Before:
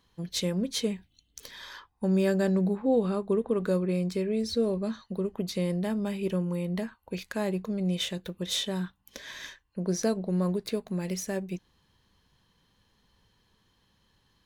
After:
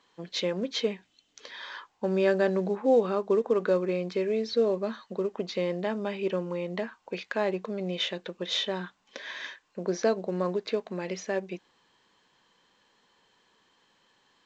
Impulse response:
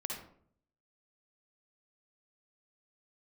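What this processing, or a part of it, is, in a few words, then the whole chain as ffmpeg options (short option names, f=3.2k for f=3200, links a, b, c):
telephone: -af "highpass=360,lowpass=3.4k,volume=5dB" -ar 16000 -c:a pcm_alaw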